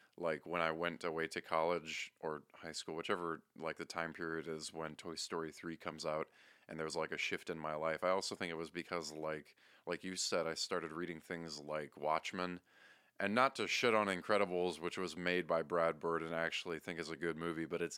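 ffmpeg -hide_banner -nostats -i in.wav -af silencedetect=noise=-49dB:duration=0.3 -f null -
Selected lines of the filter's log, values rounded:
silence_start: 6.23
silence_end: 6.69 | silence_duration: 0.46
silence_start: 9.47
silence_end: 9.87 | silence_duration: 0.41
silence_start: 12.57
silence_end: 13.20 | silence_duration: 0.63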